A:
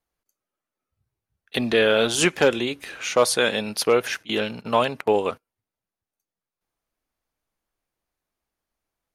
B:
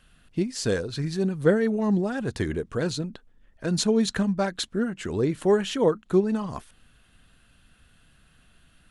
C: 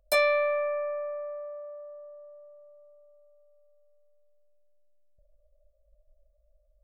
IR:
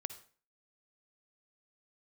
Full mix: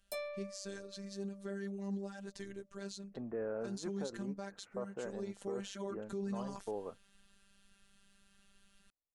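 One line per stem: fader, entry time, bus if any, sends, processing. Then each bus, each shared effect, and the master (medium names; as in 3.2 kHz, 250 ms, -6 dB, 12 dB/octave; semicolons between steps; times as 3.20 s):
-18.0 dB, 1.60 s, no send, Gaussian low-pass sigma 7 samples
5.48 s -16 dB -> 6.08 s -7.5 dB, 0.00 s, no send, peaking EQ 6.2 kHz +9.5 dB 1.1 oct; robot voice 198 Hz
-10.5 dB, 0.00 s, no send, peaking EQ 1.6 kHz -10 dB 1.9 oct; auto duck -11 dB, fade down 0.55 s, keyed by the second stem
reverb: none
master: peak limiter -30.5 dBFS, peak gain reduction 14 dB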